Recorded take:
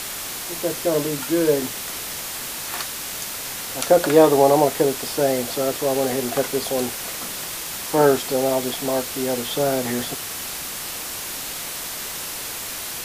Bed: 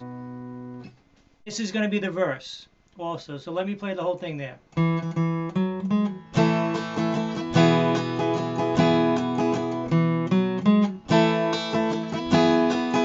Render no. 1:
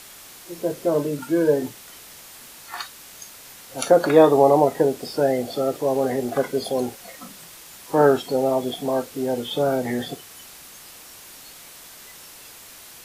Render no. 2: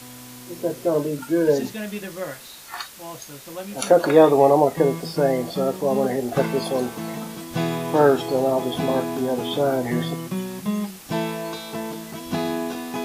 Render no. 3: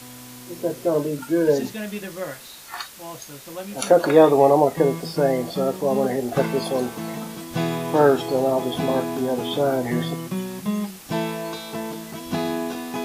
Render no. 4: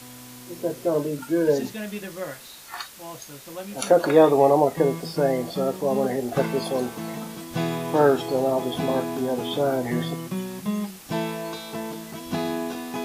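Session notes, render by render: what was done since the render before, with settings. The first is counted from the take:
noise print and reduce 13 dB
add bed -6.5 dB
nothing audible
gain -2 dB

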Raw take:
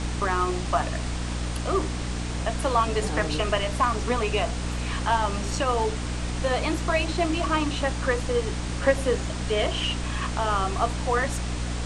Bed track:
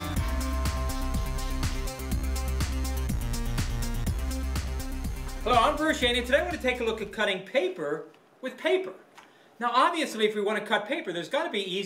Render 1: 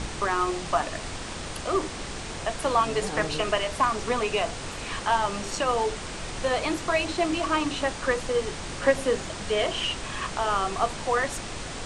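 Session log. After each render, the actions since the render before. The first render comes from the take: notches 60/120/180/240/300 Hz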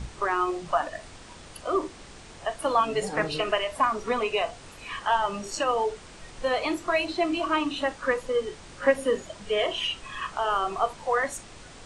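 noise print and reduce 11 dB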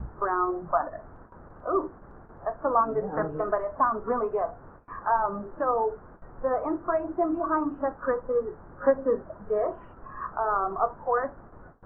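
steep low-pass 1500 Hz 48 dB/oct; gate with hold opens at -38 dBFS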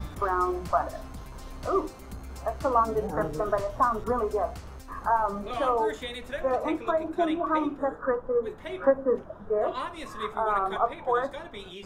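add bed track -12 dB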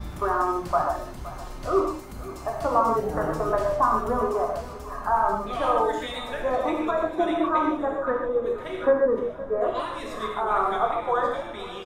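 feedback echo 0.518 s, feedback 48%, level -16.5 dB; non-linear reverb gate 0.17 s flat, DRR 0 dB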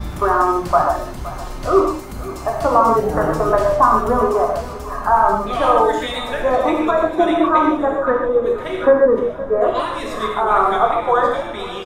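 gain +8.5 dB; limiter -2 dBFS, peak gain reduction 1.5 dB

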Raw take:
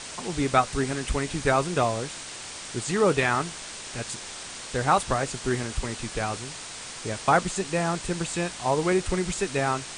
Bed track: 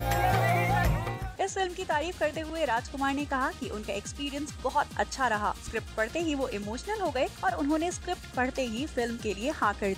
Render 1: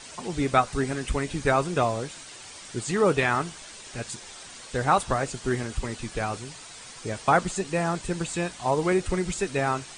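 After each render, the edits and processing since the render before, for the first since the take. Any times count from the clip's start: denoiser 8 dB, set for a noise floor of -39 dBFS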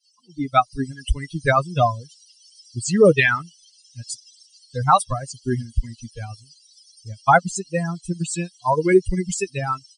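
per-bin expansion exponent 3; AGC gain up to 13.5 dB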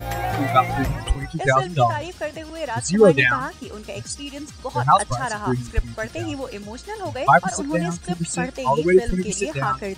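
add bed track +0.5 dB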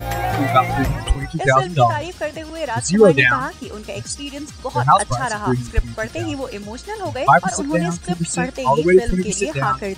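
gain +3.5 dB; limiter -2 dBFS, peak gain reduction 3 dB

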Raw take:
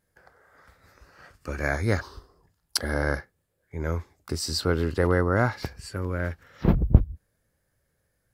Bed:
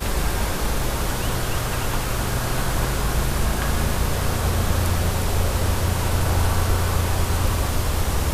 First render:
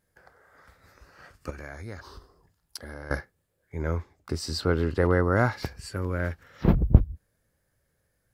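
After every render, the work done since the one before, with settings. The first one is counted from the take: 1.5–3.11 compressor 3:1, threshold -40 dBFS; 3.82–5.24 high shelf 5100 Hz -9 dB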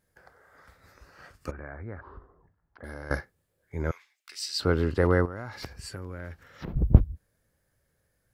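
1.51–2.84 LPF 1800 Hz 24 dB/oct; 3.91–4.6 resonant high-pass 2500 Hz, resonance Q 1.8; 5.25–6.76 compressor 8:1, threshold -33 dBFS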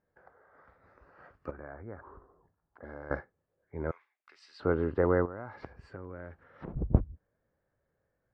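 LPF 1200 Hz 12 dB/oct; low shelf 200 Hz -10 dB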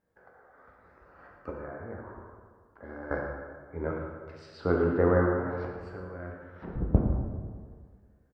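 echo 0.112 s -10.5 dB; plate-style reverb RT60 1.8 s, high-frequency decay 0.5×, DRR -0.5 dB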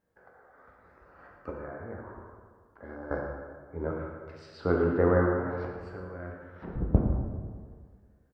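2.95–3.99 bell 2200 Hz -7.5 dB 0.92 oct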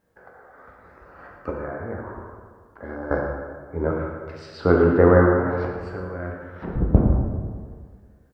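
gain +9 dB; limiter -2 dBFS, peak gain reduction 2.5 dB

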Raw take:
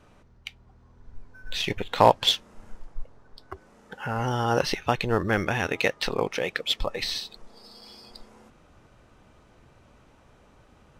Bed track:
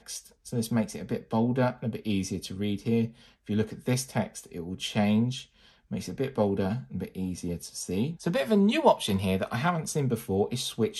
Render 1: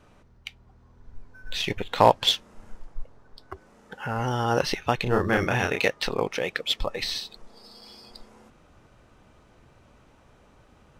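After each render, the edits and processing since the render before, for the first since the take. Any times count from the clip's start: 5.03–5.88 doubler 32 ms -3 dB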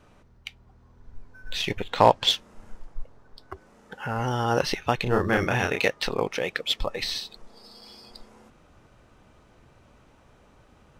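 1.9–2.3 bell 12000 Hz -9.5 dB 0.46 oct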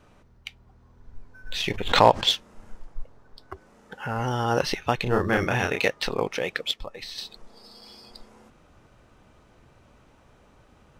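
1.53–2.24 backwards sustainer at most 77 dB/s; 6.71–7.18 gain -8.5 dB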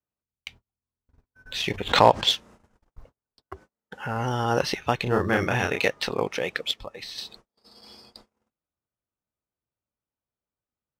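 HPF 46 Hz 12 dB/oct; gate -48 dBFS, range -38 dB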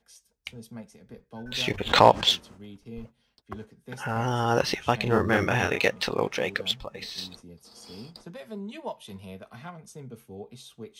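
add bed track -15 dB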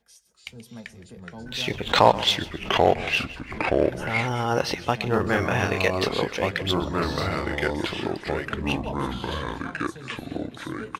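feedback echo 0.131 s, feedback 33%, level -17.5 dB; echoes that change speed 0.267 s, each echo -4 st, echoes 2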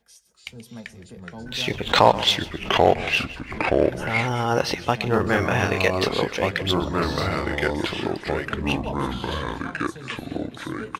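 gain +2 dB; limiter -2 dBFS, peak gain reduction 1.5 dB

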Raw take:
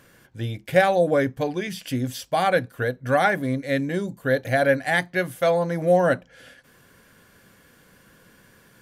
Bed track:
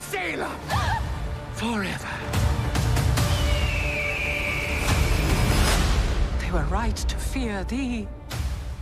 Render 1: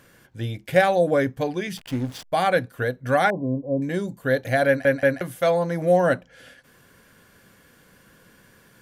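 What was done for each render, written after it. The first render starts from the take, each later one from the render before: 1.77–2.33 backlash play -29.5 dBFS; 3.3–3.82 brick-wall FIR low-pass 1100 Hz; 4.67 stutter in place 0.18 s, 3 plays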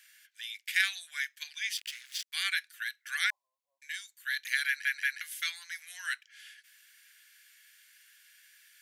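steep high-pass 1800 Hz 36 dB/oct; dynamic EQ 5300 Hz, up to +4 dB, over -49 dBFS, Q 0.8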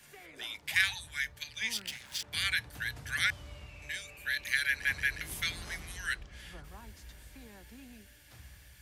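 add bed track -25 dB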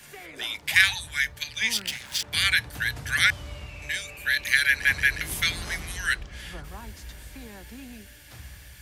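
gain +9 dB

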